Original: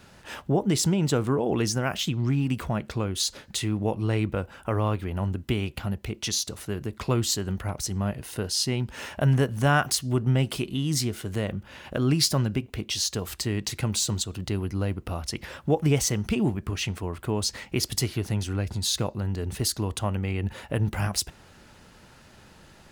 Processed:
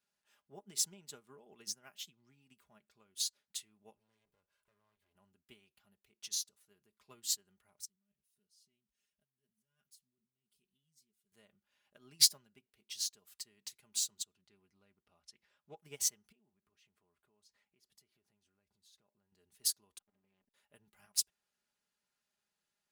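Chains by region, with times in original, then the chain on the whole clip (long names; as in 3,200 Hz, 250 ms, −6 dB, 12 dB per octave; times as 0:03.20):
0:03.97–0:05.15: lower of the sound and its delayed copy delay 1.9 ms + parametric band 69 Hz +4.5 dB 2.4 octaves + downward compressor 3 to 1, threshold −35 dBFS
0:07.85–0:11.32: guitar amp tone stack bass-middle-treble 10-0-1 + compressor whose output falls as the input rises −42 dBFS + comb filter 4.9 ms, depth 95%
0:14.33–0:15.77: high-frequency loss of the air 56 metres + highs frequency-modulated by the lows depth 0.14 ms
0:16.32–0:19.32: high-shelf EQ 3,200 Hz −12 dB + downward compressor 5 to 1, threshold −33 dBFS
0:19.98–0:20.54: lower of the sound and its delayed copy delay 3.8 ms + head-to-tape spacing loss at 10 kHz 26 dB + saturating transformer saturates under 310 Hz
whole clip: spectral tilt +3 dB per octave; comb filter 4.9 ms, depth 50%; expander for the loud parts 2.5 to 1, over −31 dBFS; level −8.5 dB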